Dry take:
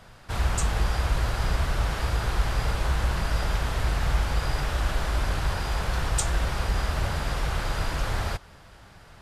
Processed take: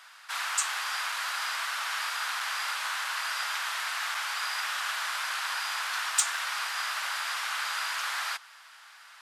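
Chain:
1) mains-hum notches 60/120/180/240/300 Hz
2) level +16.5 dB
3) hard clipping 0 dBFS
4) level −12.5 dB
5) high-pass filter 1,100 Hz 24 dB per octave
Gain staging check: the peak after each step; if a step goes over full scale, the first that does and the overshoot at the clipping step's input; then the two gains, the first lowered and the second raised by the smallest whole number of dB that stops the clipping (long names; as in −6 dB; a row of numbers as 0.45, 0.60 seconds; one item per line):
−11.0, +5.5, 0.0, −12.5, −10.5 dBFS
step 2, 5.5 dB
step 2 +10.5 dB, step 4 −6.5 dB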